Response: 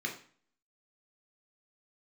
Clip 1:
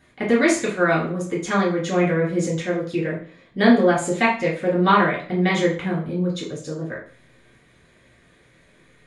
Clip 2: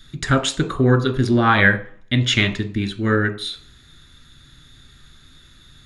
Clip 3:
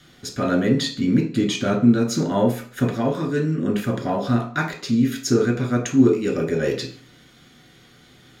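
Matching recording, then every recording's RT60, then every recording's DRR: 3; 0.45 s, 0.45 s, 0.45 s; -6.5 dB, 7.5 dB, 0.5 dB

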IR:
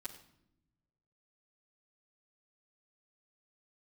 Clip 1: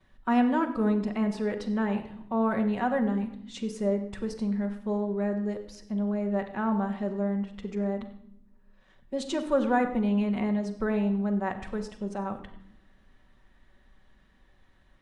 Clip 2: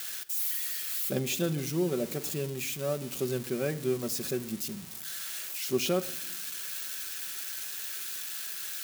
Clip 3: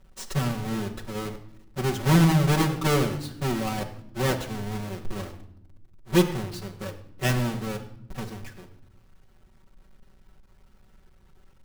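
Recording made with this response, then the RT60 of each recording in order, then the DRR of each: 1; 0.75 s, 0.80 s, 0.75 s; -10.5 dB, 6.5 dB, -3.5 dB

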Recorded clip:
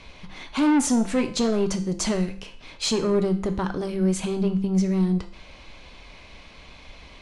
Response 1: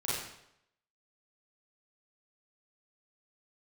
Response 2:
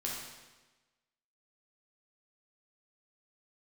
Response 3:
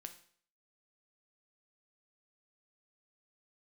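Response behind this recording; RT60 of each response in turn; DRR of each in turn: 3; 0.80 s, 1.2 s, 0.55 s; -9.0 dB, -4.0 dB, 6.5 dB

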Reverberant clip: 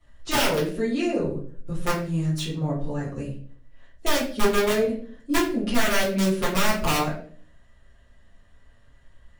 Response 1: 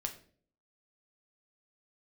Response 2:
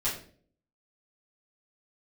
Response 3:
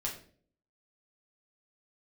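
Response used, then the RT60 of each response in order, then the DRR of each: 2; 0.50 s, 0.50 s, 0.50 s; 3.5 dB, -10.5 dB, -3.5 dB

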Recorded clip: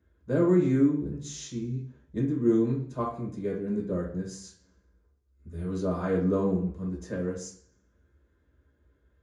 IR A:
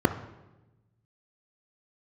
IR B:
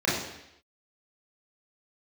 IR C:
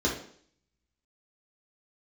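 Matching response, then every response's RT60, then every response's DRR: C; 1.1 s, 0.80 s, 0.55 s; 8.5 dB, -7.5 dB, -4.0 dB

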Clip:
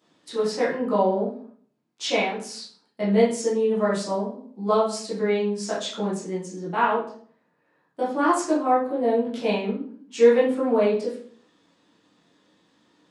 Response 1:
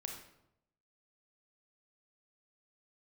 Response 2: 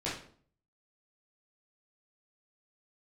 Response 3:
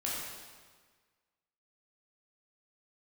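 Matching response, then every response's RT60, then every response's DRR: 2; 0.80 s, 0.50 s, 1.5 s; 2.0 dB, -9.0 dB, -6.0 dB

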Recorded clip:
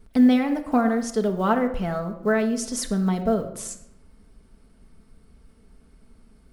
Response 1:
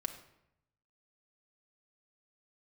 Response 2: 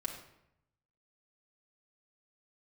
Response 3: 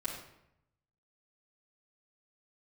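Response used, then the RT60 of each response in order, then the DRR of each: 1; 0.80 s, 0.80 s, 0.80 s; 4.0 dB, -1.5 dB, -9.5 dB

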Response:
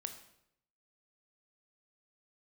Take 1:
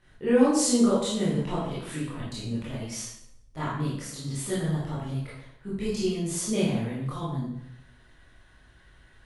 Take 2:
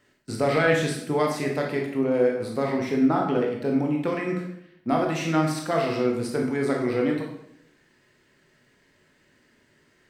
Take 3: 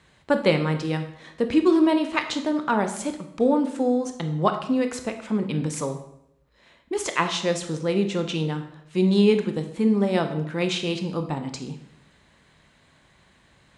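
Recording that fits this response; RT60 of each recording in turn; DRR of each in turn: 3; 0.75 s, 0.75 s, 0.75 s; -9.0 dB, -0.5 dB, 6.5 dB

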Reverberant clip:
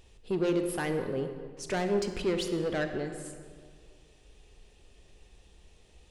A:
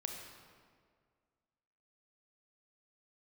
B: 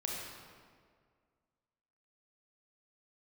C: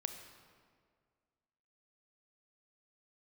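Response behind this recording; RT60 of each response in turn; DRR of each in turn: C; 1.9 s, 1.9 s, 1.9 s; 2.0 dB, -3.0 dB, 6.5 dB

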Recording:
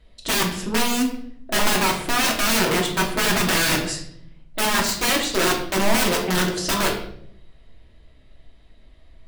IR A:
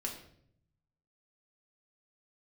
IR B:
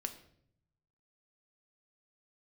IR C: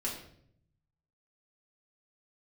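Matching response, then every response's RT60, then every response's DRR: A; 0.65 s, 0.65 s, 0.65 s; -1.0 dB, 6.0 dB, -5.0 dB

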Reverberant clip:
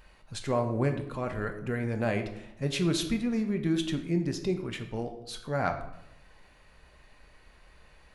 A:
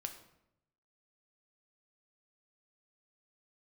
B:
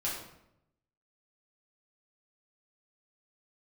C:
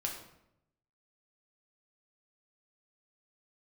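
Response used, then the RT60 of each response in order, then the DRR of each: A; 0.80 s, 0.80 s, 0.80 s; 5.5 dB, -7.0 dB, -0.5 dB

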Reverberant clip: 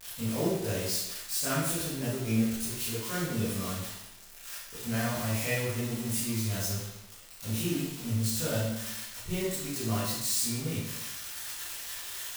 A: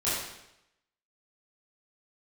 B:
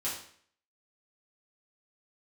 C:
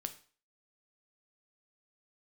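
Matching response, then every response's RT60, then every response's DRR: A; 0.85 s, 0.55 s, 0.40 s; -11.5 dB, -8.0 dB, 8.0 dB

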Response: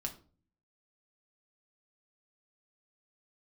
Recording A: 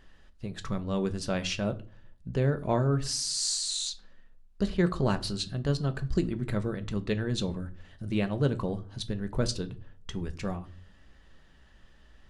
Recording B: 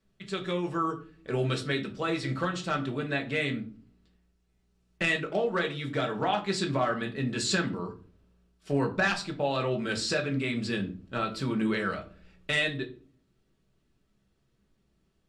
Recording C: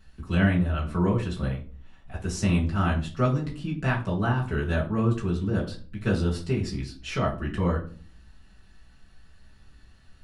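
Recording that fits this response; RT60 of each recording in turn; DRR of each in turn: B; 0.45 s, 0.40 s, 0.40 s; 8.5 dB, 1.5 dB, -6.0 dB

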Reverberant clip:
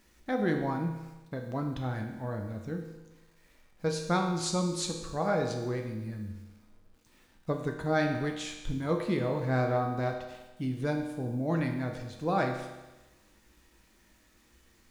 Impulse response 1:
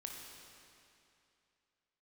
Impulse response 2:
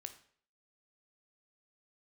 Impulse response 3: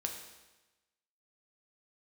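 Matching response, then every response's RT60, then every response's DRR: 3; 2.6 s, 0.55 s, 1.1 s; 0.0 dB, 7.5 dB, 2.5 dB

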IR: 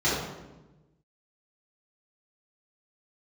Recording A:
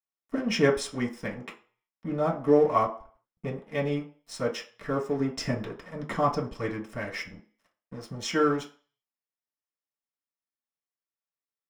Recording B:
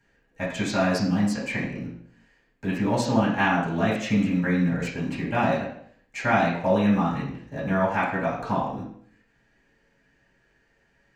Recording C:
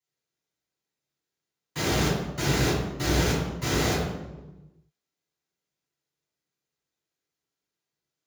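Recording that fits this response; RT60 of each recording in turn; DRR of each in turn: C; 0.40 s, 0.60 s, 1.1 s; -3.5 dB, -9.0 dB, -10.5 dB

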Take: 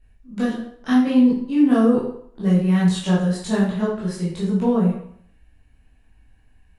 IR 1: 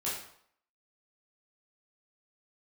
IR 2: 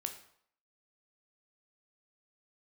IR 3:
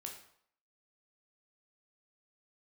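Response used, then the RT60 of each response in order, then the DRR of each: 1; 0.65 s, 0.65 s, 0.65 s; -8.5 dB, 5.5 dB, 1.0 dB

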